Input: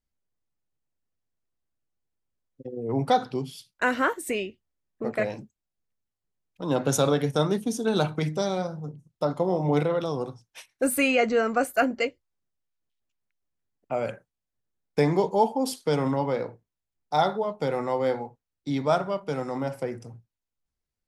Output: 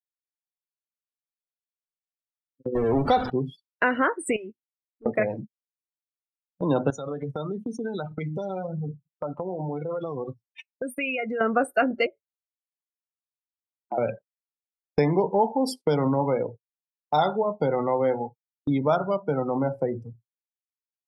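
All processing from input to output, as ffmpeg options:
-filter_complex "[0:a]asettb=1/sr,asplit=3[a][b][c];[a]atrim=end=2.754[d];[b]atrim=start=2.75:end=3.3,asetpts=PTS-STARTPTS,afade=t=in:d=0.004:c=qsin,afade=t=out:st=0.546:d=0.004:c=qsin,aeval=exprs='val(0)+0.5*0.0501*sgn(val(0))':c=same,lowshelf=f=100:t=q:w=3:g=7[e];[c]atrim=start=3.296[f];[d][e]acrossfade=d=0.004:c1=hsin:c2=qsin[g];[g][f]acrossfade=d=0.004:c1=qsin:c2=hsin,asettb=1/sr,asplit=3[h][i][j];[h]atrim=end=4.364[k];[i]atrim=start=4.36:end=5.06,asetpts=PTS-STARTPTS,afade=t=in:d=0.004:c=qsin,afade=t=out:st=0.696:d=0.004:c=qsin,bandreject=f=50:t=h:w=6,bandreject=f=100:t=h:w=6,bandreject=f=150:t=h:w=6,bandreject=f=200:t=h:w=6,bandreject=f=250:t=h:w=6,bandreject=f=300:t=h:w=6,bandreject=f=350:t=h:w=6,acompressor=threshold=-36dB:ratio=20:attack=3.2:release=140:knee=1:detection=peak,aeval=exprs='clip(val(0),-1,0.01)':c=same[l];[j]atrim=start=5.056[m];[k][l]acrossfade=d=0.004:c1=hsin:c2=qsin[n];[n][m]acrossfade=d=0.004:c1=qsin:c2=hsin,asettb=1/sr,asplit=3[o][p][q];[o]atrim=end=6.904[r];[p]atrim=start=6.9:end=11.41,asetpts=PTS-STARTPTS,afade=t=in:d=0.004:c=qsin,afade=t=out:st=4.506:d=0.004:c=qsin,acompressor=threshold=-35dB:ratio=16:attack=3.2:release=140:knee=1:detection=peak,equalizer=f=2k:w=0.52:g=7[s];[q]atrim=start=11.406[t];[r][s]acrossfade=d=0.004:c1=hsin:c2=qsin[u];[u][t]acrossfade=d=0.004:c1=qsin:c2=hsin,asettb=1/sr,asplit=3[v][w][x];[v]atrim=end=12.064[y];[w]atrim=start=12.06:end=13.98,asetpts=PTS-STARTPTS,afade=t=in:d=0.004:c=qsin,afade=t=out:st=1.916:d=0.004:c=qsin,lowpass=2.5k,acompressor=threshold=-39dB:ratio=2:attack=3.2:release=140:knee=1:detection=peak,afreqshift=80[z];[x]atrim=start=13.976[aa];[y][z]acrossfade=d=0.004:c1=hsin:c2=qsin[ab];[ab][aa]acrossfade=d=0.004:c1=qsin:c2=hsin,afftdn=nr=34:nf=-34,agate=range=-19dB:threshold=-42dB:ratio=16:detection=peak,acompressor=threshold=-34dB:ratio=2,volume=9dB"

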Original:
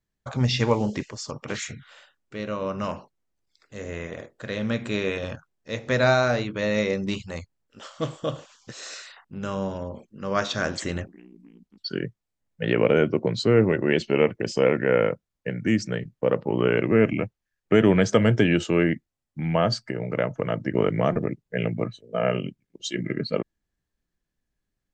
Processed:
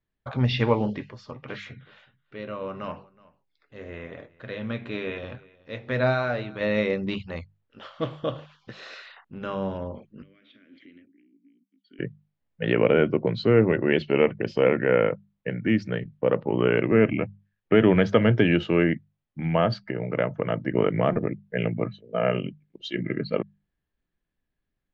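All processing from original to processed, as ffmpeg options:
-filter_complex "[0:a]asettb=1/sr,asplit=3[a][b][c];[a]atrim=end=0.934[d];[b]atrim=start=0.93:end=6.61,asetpts=PTS-STARTPTS,afade=t=in:d=0.004:c=qsin,afade=t=out:st=5.676:d=0.004:c=qsin,flanger=delay=6.6:depth=1.9:regen=66:speed=1.5:shape=triangular,aecho=1:1:370:0.0708,atrim=end_sample=250488[e];[c]atrim=start=6.606[f];[d][e]acrossfade=d=0.004:c1=hsin:c2=qsin[g];[g][f]acrossfade=d=0.004:c1=qsin:c2=hsin,asettb=1/sr,asplit=3[h][i][j];[h]atrim=end=10.224[k];[i]atrim=start=10.22:end=11.99,asetpts=PTS-STARTPTS,afade=t=in:d=0.004:c=qsin,afade=t=out:st=1.766:d=0.004:c=qsin,bass=f=250:g=-9,treble=f=4k:g=-6,acompressor=threshold=-34dB:ratio=12:attack=3.2:release=140:knee=1:detection=peak,asplit=3[l][m][n];[l]bandpass=f=270:t=q:w=8,volume=0dB[o];[m]bandpass=f=2.29k:t=q:w=8,volume=-6dB[p];[n]bandpass=f=3.01k:t=q:w=8,volume=-9dB[q];[o][p][q]amix=inputs=3:normalize=0[r];[j]atrim=start=11.986[s];[k][r]acrossfade=d=0.004:c1=hsin:c2=qsin[t];[t][s]acrossfade=d=0.004:c1=qsin:c2=hsin,lowpass=f=3.7k:w=0.5412,lowpass=f=3.7k:w=1.3066,bandreject=f=50:t=h:w=6,bandreject=f=100:t=h:w=6,bandreject=f=150:t=h:w=6,bandreject=f=200:t=h:w=6"

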